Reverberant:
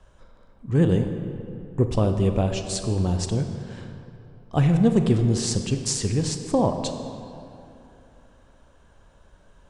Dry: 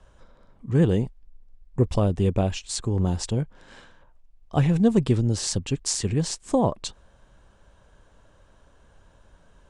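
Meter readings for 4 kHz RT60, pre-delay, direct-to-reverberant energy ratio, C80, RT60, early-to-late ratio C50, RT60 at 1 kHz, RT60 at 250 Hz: 1.7 s, 24 ms, 6.0 dB, 8.0 dB, 2.9 s, 6.5 dB, 2.9 s, 2.9 s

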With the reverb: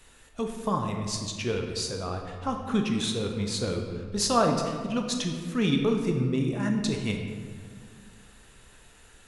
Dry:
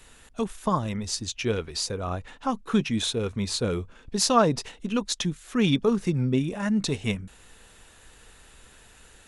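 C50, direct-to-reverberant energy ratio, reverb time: 5.0 dB, 3.0 dB, 1.9 s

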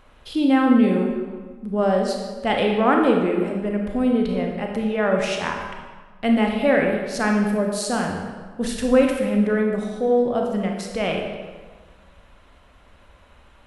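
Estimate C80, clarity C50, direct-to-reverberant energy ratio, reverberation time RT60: 5.0 dB, 3.5 dB, 1.5 dB, 1.5 s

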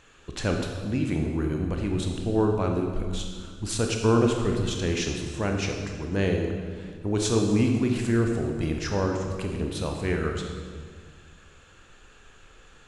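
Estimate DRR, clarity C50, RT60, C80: 2.0 dB, 4.0 dB, 1.7 s, 5.0 dB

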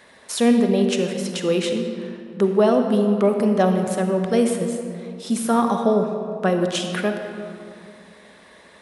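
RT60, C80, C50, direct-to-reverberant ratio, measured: 2.5 s, 6.0 dB, 5.0 dB, 4.5 dB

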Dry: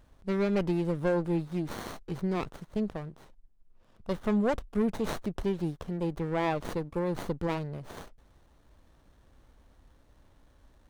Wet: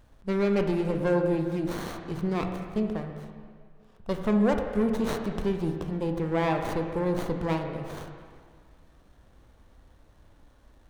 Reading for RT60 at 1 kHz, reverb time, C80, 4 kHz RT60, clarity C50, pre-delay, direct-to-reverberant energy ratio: 1.9 s, 1.9 s, 6.5 dB, 1.8 s, 5.5 dB, 8 ms, 4.0 dB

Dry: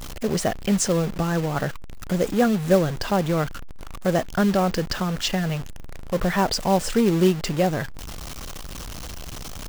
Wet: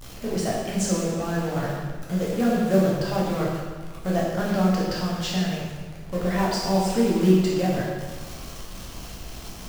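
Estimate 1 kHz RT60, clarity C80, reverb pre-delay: 1.4 s, 2.0 dB, 8 ms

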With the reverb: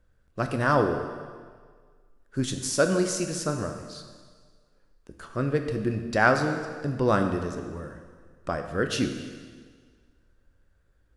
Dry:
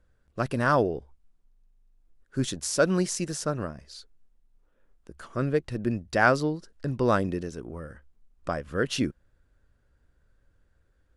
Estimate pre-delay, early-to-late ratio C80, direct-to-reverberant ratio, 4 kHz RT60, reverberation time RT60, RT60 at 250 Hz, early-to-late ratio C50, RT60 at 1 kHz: 6 ms, 8.5 dB, 5.5 dB, 1.6 s, 1.7 s, 1.6 s, 7.0 dB, 1.7 s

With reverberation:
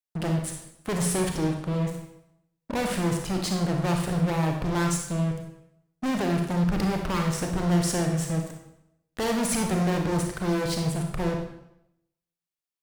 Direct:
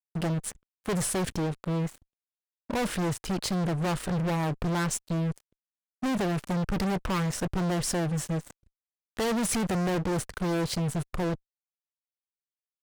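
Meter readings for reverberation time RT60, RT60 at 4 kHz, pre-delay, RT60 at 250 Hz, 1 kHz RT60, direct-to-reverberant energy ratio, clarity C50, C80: 0.85 s, 0.70 s, 31 ms, 0.85 s, 0.80 s, 2.0 dB, 4.5 dB, 7.5 dB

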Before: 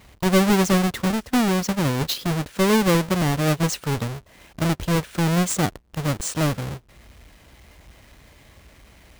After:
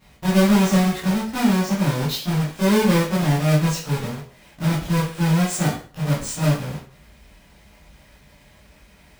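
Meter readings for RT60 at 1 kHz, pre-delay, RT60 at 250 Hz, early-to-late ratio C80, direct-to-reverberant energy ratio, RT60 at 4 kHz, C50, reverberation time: 0.40 s, 7 ms, 0.40 s, 10.0 dB, −10.5 dB, 0.40 s, 4.5 dB, 0.40 s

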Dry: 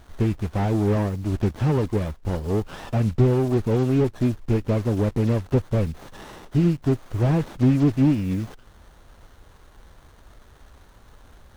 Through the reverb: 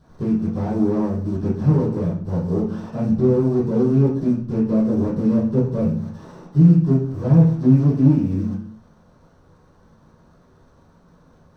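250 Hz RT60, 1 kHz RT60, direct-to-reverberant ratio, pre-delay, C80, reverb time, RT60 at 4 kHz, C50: can't be measured, 0.55 s, −12.0 dB, 3 ms, 9.5 dB, 0.55 s, 0.50 s, 5.5 dB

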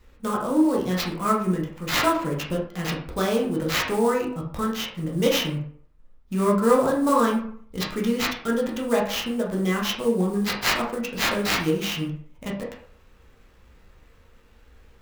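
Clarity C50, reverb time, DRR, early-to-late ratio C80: 6.0 dB, 0.55 s, −3.0 dB, 10.0 dB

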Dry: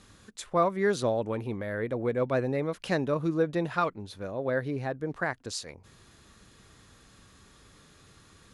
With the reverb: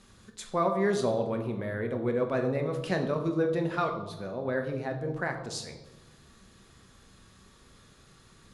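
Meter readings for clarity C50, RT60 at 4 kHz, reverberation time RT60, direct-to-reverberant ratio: 8.5 dB, 0.70 s, 1.0 s, 4.0 dB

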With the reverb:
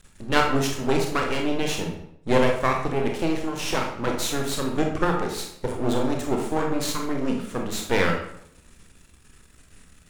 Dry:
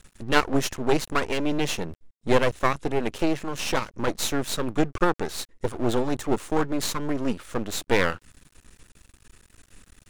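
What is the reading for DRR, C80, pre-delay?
1.0 dB, 8.5 dB, 25 ms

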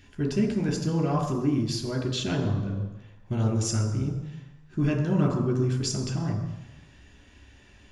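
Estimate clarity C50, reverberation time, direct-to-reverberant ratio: 7.5 dB, 1.0 s, 1.5 dB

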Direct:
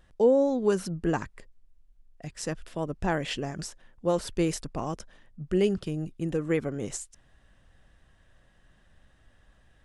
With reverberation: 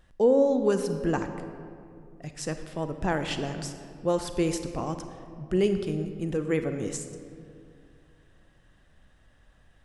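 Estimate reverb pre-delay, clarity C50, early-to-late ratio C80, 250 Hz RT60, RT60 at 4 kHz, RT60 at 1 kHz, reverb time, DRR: 30 ms, 8.5 dB, 9.5 dB, 2.8 s, 1.3 s, 2.3 s, 2.5 s, 8.0 dB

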